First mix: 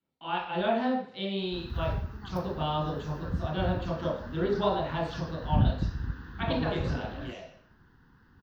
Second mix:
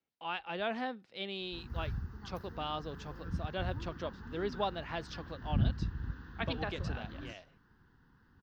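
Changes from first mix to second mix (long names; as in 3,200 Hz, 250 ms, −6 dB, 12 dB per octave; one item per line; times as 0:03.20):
background −5.5 dB
reverb: off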